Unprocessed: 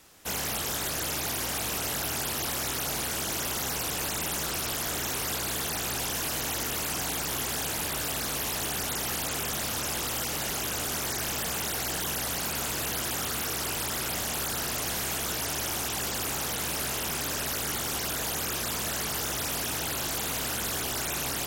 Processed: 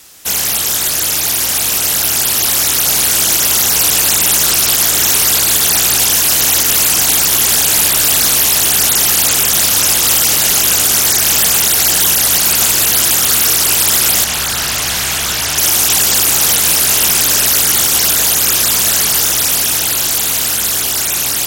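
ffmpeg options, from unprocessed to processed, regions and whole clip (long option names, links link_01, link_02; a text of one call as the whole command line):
ffmpeg -i in.wav -filter_complex "[0:a]asettb=1/sr,asplit=3[link_01][link_02][link_03];[link_01]atrim=end=14.244[link_04];[link_02]atrim=start=14.24:end=15.58,asetpts=PTS-STARTPTS,afade=type=in:duration=0.004:curve=qsin,afade=type=out:start_time=1.336:duration=0.004:curve=qsin,lowpass=frequency=3000:poles=1,equalizer=frequency=370:width=0.63:gain=-6.5[link_05];[link_03]atrim=start=15.576[link_06];[link_04][link_05]acrossfade=duration=0.004:curve1=hsin:curve2=qsin[link_07];[link_07][link_06]acrossfade=duration=0.004:curve1=qsin:curve2=hsin,highshelf=frequency=2400:gain=12,dynaudnorm=framelen=380:gausssize=17:maxgain=7dB,alimiter=level_in=8dB:limit=-1dB:release=50:level=0:latency=1,volume=-1dB" out.wav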